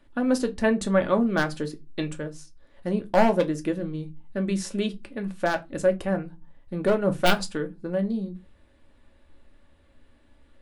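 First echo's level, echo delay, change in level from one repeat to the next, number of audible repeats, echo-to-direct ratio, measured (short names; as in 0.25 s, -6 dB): none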